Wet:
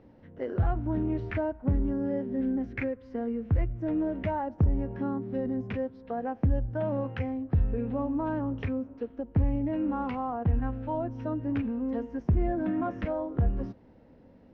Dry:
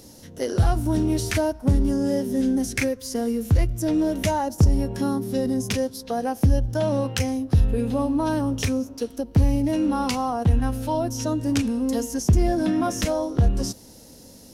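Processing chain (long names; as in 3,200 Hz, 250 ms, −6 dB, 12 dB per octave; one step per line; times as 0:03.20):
low-pass filter 2,200 Hz 24 dB per octave
level −7 dB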